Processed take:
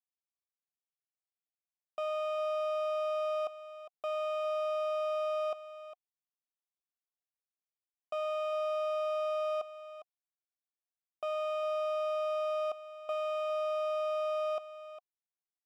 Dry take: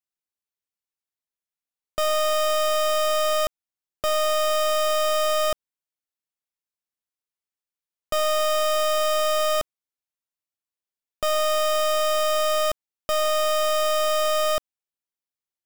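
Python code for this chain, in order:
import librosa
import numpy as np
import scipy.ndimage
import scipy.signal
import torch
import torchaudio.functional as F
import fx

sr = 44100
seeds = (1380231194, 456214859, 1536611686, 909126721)

y = fx.vowel_filter(x, sr, vowel='a')
y = y + 10.0 ** (-13.0 / 20.0) * np.pad(y, (int(405 * sr / 1000.0), 0))[:len(y)]
y = y * librosa.db_to_amplitude(-2.5)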